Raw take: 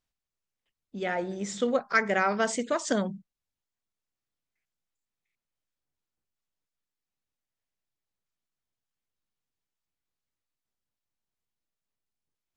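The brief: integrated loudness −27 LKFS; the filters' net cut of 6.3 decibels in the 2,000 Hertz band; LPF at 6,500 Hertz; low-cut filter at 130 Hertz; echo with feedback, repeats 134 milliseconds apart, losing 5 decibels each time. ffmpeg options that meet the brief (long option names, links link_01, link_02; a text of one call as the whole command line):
ffmpeg -i in.wav -af "highpass=130,lowpass=6500,equalizer=frequency=2000:width_type=o:gain=-8.5,aecho=1:1:134|268|402|536|670|804|938:0.562|0.315|0.176|0.0988|0.0553|0.031|0.0173,volume=2dB" out.wav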